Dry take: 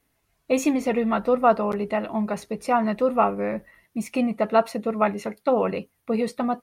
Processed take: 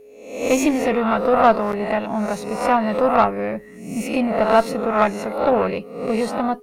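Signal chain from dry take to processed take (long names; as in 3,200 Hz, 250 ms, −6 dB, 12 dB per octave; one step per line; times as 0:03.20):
peak hold with a rise ahead of every peak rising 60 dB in 0.69 s
harmonic generator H 4 −21 dB, 7 −34 dB, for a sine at −5 dBFS
steady tone 420 Hz −45 dBFS
level +2.5 dB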